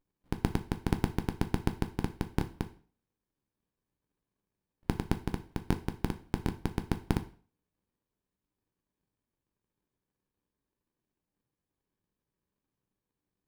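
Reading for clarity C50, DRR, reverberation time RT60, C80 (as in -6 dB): 15.5 dB, 7.5 dB, 0.45 s, 19.5 dB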